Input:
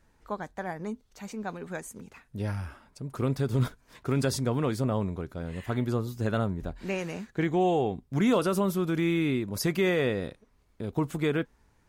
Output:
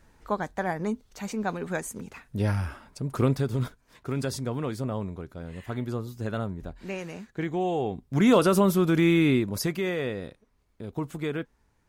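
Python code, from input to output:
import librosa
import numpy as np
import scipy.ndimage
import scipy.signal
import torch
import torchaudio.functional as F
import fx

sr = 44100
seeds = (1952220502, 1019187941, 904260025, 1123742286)

y = fx.gain(x, sr, db=fx.line((3.21, 6.0), (3.63, -3.0), (7.69, -3.0), (8.38, 5.5), (9.4, 5.5), (9.8, -3.5)))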